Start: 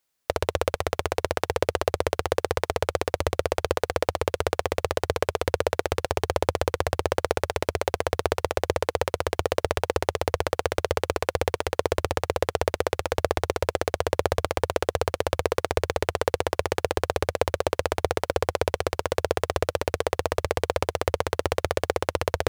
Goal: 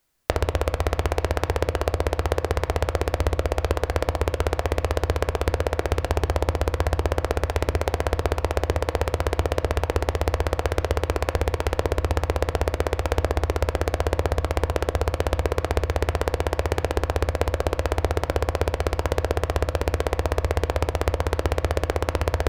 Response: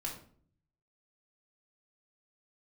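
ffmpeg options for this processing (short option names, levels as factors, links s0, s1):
-filter_complex "[0:a]lowshelf=f=170:g=11.5,acompressor=threshold=0.0631:ratio=6,asplit=2[s0][s1];[1:a]atrim=start_sample=2205,lowpass=2900[s2];[s1][s2]afir=irnorm=-1:irlink=0,volume=0.473[s3];[s0][s3]amix=inputs=2:normalize=0,volume=1.58"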